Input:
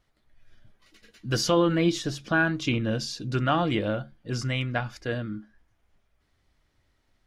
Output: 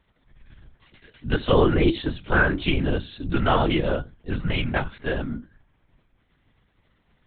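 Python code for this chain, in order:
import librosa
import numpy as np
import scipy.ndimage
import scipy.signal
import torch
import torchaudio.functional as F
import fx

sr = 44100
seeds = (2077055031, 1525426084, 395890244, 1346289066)

y = fx.lpc_vocoder(x, sr, seeds[0], excitation='whisper', order=10)
y = y * librosa.db_to_amplitude(4.0)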